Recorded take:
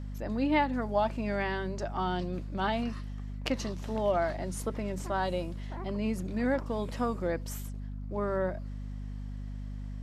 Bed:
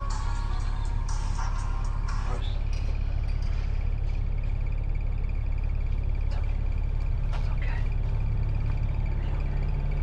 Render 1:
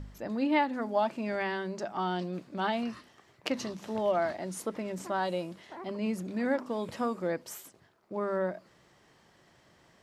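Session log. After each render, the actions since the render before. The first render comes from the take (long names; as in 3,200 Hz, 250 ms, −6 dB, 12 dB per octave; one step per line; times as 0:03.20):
hum removal 50 Hz, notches 5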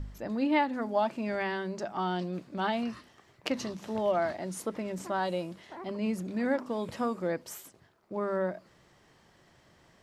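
low-shelf EQ 83 Hz +7 dB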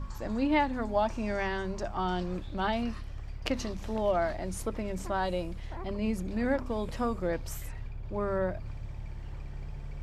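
mix in bed −12.5 dB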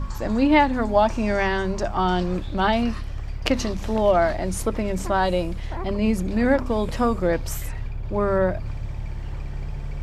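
level +9.5 dB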